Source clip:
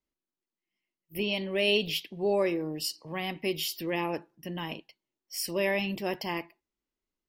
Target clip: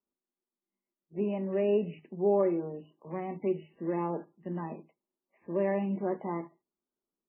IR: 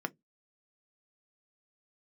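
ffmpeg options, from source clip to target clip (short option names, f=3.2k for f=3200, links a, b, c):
-filter_complex "[0:a]lowpass=1k,asplit=2[a][b];[1:a]atrim=start_sample=2205,highshelf=f=4.1k:g=-10[c];[b][c]afir=irnorm=-1:irlink=0,volume=2.5dB[d];[a][d]amix=inputs=2:normalize=0,volume=-8dB" -ar 8000 -c:a libmp3lame -b:a 8k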